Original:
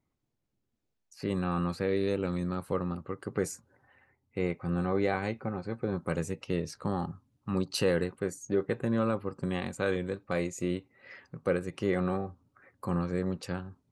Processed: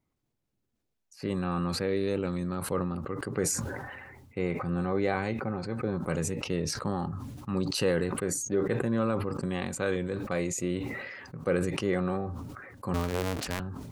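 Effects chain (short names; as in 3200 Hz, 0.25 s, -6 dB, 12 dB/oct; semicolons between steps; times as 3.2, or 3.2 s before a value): 12.94–13.6 cycle switcher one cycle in 2, inverted; sustainer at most 33 dB/s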